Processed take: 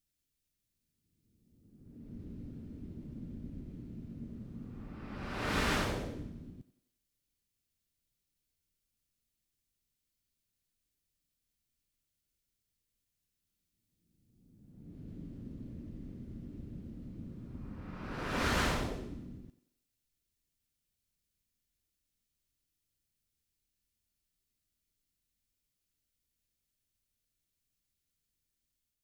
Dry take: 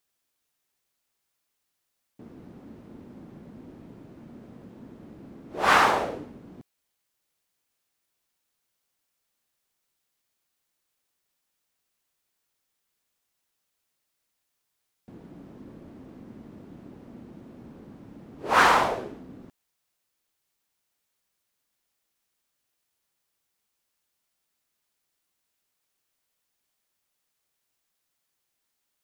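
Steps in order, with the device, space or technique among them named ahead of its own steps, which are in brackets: passive tone stack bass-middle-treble 10-0-1; thinning echo 91 ms, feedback 51%, high-pass 230 Hz, level -14.5 dB; reverse reverb (reverse; reverb RT60 1.6 s, pre-delay 93 ms, DRR -2.5 dB; reverse); gain +11 dB

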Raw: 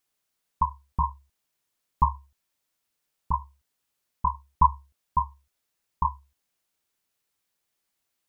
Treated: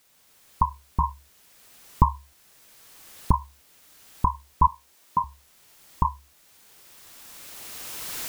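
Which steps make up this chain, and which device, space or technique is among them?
cheap recorder with automatic gain (white noise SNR 31 dB; recorder AGC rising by 14 dB/s); 4.67–5.24 HPF 190 Hz 12 dB/oct

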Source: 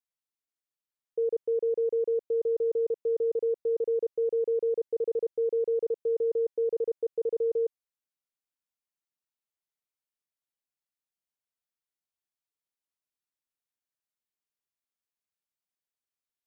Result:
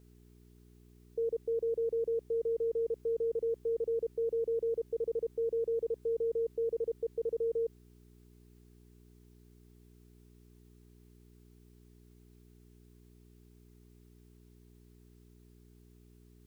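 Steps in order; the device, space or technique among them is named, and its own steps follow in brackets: video cassette with head-switching buzz (buzz 60 Hz, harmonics 7, -54 dBFS -4 dB/oct; white noise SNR 38 dB); gain -5 dB

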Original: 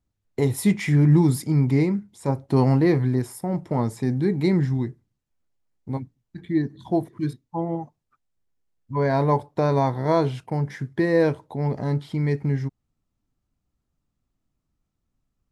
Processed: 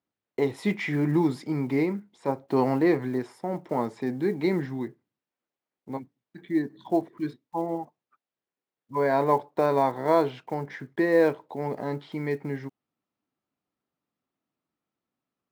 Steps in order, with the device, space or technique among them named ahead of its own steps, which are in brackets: early digital voice recorder (BPF 300–3500 Hz; block floating point 7-bit)

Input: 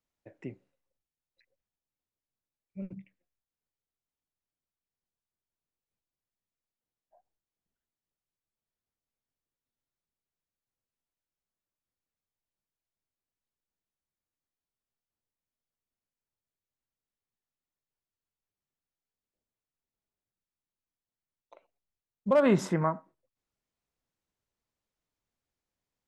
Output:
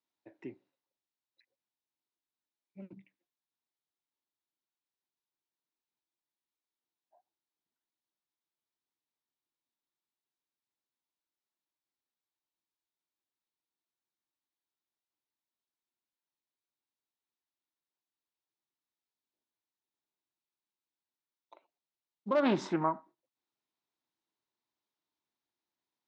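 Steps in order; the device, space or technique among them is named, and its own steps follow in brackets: full-range speaker at full volume (Doppler distortion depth 0.41 ms; speaker cabinet 180–6300 Hz, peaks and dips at 180 Hz -5 dB, 330 Hz +6 dB, 510 Hz -6 dB, 930 Hz +6 dB, 3800 Hz +6 dB); gain -3.5 dB

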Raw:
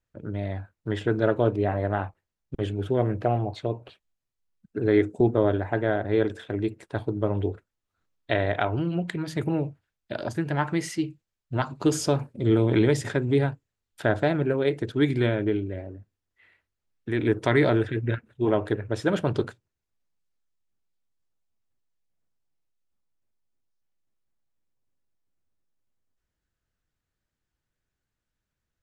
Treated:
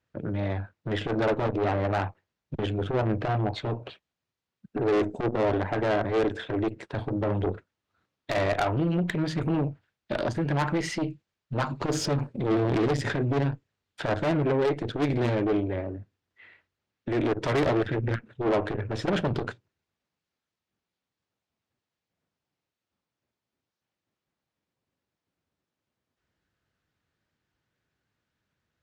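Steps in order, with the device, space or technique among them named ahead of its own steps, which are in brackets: valve radio (BPF 94–4700 Hz; tube stage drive 27 dB, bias 0.35; core saturation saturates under 220 Hz); gain +8 dB

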